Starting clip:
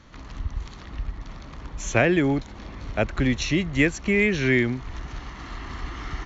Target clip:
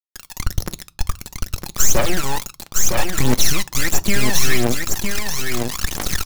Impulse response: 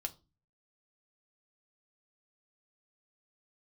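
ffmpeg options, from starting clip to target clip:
-filter_complex "[0:a]lowshelf=f=83:g=-6,aecho=1:1:5.4:0.73,acompressor=threshold=-25dB:ratio=4,aexciter=amount=11.4:drive=3.1:freq=4.6k,aeval=exprs='(tanh(14.1*val(0)+0.8)-tanh(0.8))/14.1':c=same,acrusher=bits=4:mix=0:aa=0.000001,aphaser=in_gain=1:out_gain=1:delay=1.2:decay=0.72:speed=1.5:type=triangular,aecho=1:1:958:0.562,asplit=2[a][b];[1:a]atrim=start_sample=2205[c];[b][c]afir=irnorm=-1:irlink=0,volume=-5dB[d];[a][d]amix=inputs=2:normalize=0,alimiter=level_in=5dB:limit=-1dB:release=50:level=0:latency=1,volume=-1dB"

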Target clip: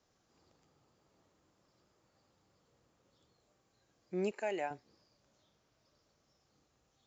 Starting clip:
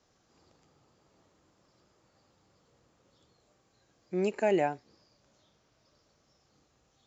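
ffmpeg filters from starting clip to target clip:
-filter_complex "[0:a]asettb=1/sr,asplit=3[a][b][c];[a]atrim=end=4.314[d];[b]atrim=start=4.31:end=4.71,asetpts=PTS-STARTPTS,afade=t=in:d=0.004:c=qsin,afade=t=out:st=0.396:d=0.004:c=qsin,highpass=f=780:p=1[e];[c]atrim=start=4.706[f];[d][e]acrossfade=d=0.004:c1=hsin:c2=qsin[g];[g][f]acrossfade=d=0.004:c1=qsin:c2=hsin,volume=-5.5dB"

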